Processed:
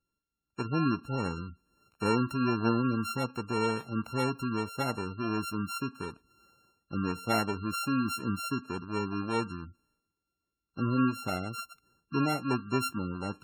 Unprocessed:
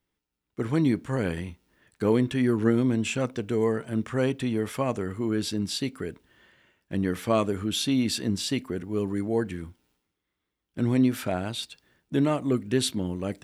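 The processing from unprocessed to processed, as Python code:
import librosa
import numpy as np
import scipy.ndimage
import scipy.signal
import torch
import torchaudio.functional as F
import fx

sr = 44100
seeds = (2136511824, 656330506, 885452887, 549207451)

y = np.r_[np.sort(x[:len(x) // 32 * 32].reshape(-1, 32), axis=1).ravel(), x[len(x) // 32 * 32:]]
y = fx.spec_gate(y, sr, threshold_db=-20, keep='strong')
y = y * 10.0 ** (-4.5 / 20.0)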